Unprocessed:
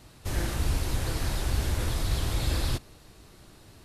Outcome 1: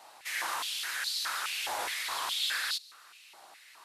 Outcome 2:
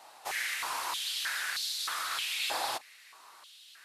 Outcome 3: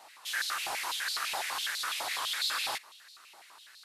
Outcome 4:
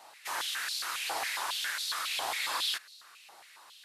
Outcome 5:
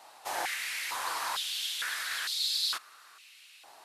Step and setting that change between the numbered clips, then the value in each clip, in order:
step-sequenced high-pass, rate: 4.8 Hz, 3.2 Hz, 12 Hz, 7.3 Hz, 2.2 Hz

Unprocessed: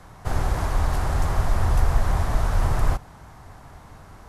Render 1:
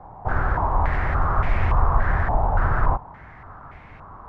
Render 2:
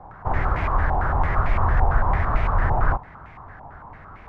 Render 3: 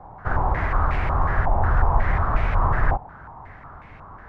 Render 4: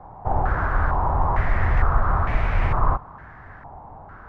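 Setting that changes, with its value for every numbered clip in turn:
step-sequenced low-pass, rate: 3.5 Hz, 8.9 Hz, 5.5 Hz, 2.2 Hz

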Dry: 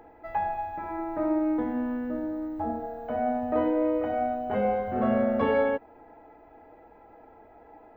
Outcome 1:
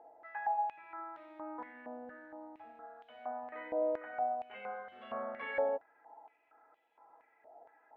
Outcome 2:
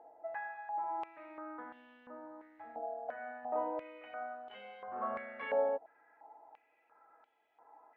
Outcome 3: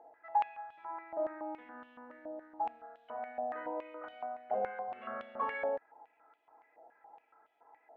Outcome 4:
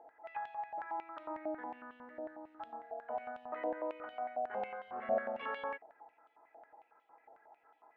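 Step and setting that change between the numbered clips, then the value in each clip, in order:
step-sequenced band-pass, rate: 4.3 Hz, 2.9 Hz, 7.1 Hz, 11 Hz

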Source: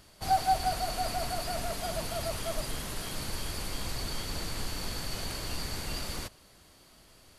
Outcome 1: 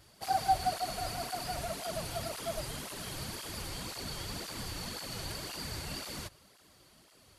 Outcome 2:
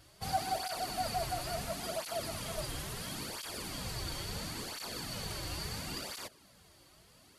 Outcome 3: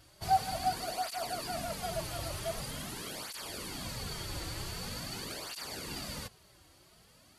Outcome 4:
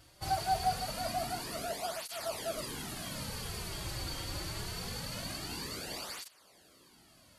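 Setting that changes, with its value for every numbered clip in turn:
cancelling through-zero flanger, nulls at: 1.9 Hz, 0.73 Hz, 0.45 Hz, 0.24 Hz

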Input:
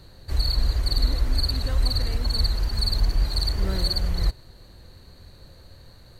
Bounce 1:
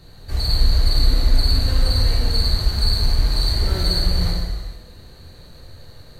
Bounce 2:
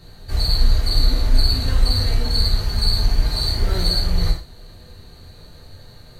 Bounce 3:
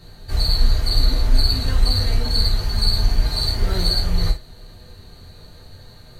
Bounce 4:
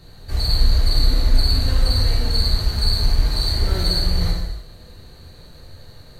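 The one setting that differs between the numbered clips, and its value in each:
gated-style reverb, gate: 540 ms, 160 ms, 100 ms, 360 ms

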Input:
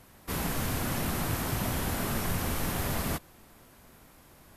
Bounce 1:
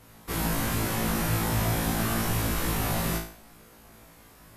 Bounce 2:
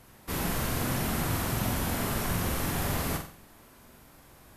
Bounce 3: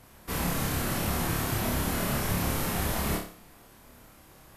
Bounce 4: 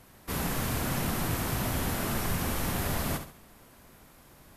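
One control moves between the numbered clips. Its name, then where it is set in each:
flutter echo, walls apart: 3.1 m, 7.8 m, 4.9 m, 11.7 m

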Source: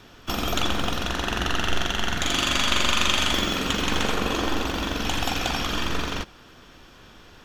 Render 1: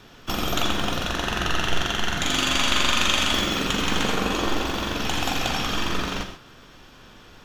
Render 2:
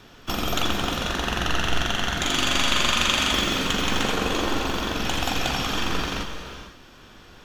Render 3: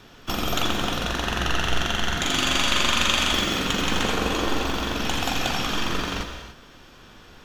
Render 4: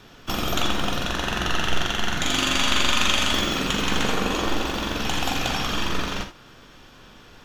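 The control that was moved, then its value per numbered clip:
gated-style reverb, gate: 160 ms, 530 ms, 320 ms, 100 ms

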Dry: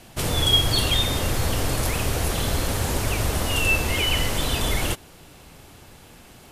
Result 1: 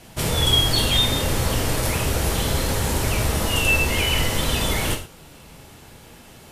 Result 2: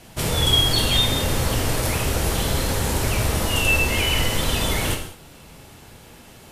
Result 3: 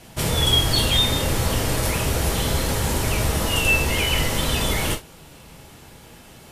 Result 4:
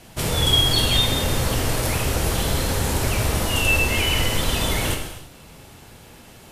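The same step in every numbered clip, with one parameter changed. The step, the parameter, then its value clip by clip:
gated-style reverb, gate: 150 ms, 240 ms, 90 ms, 360 ms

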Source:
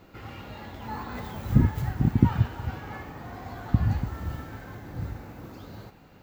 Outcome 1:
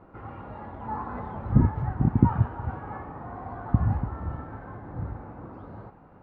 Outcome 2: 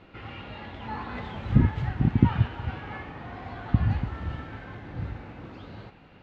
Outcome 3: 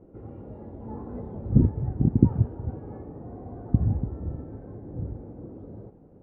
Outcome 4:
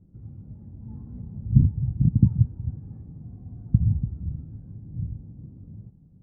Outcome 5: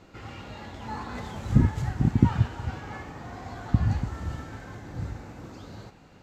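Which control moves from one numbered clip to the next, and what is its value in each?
resonant low-pass, frequency: 1.1 kHz, 3 kHz, 450 Hz, 160 Hz, 7.7 kHz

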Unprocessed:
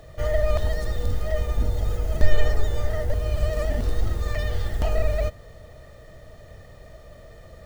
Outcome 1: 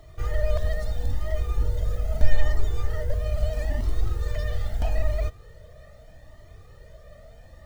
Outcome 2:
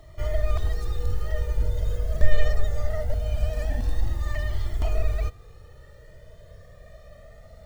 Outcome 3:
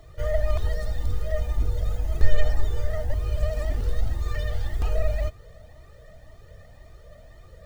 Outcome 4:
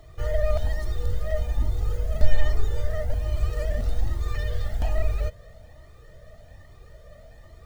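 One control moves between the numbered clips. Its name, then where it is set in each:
Shepard-style flanger, rate: 0.78 Hz, 0.22 Hz, 1.9 Hz, 1.2 Hz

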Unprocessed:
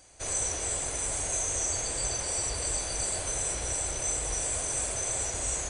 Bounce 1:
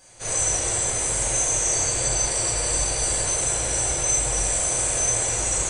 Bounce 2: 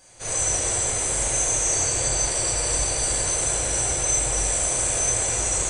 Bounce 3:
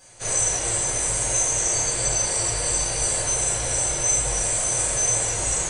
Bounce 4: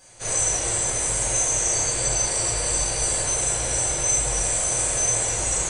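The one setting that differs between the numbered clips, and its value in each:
gated-style reverb, gate: 310 ms, 500 ms, 130 ms, 200 ms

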